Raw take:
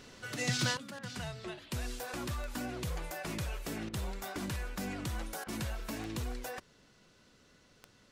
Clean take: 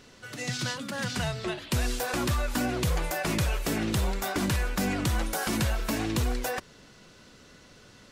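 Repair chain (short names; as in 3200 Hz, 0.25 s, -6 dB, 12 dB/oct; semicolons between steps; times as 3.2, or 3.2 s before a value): de-click; interpolate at 0.99/3.89/5.44, 42 ms; gain 0 dB, from 0.77 s +10.5 dB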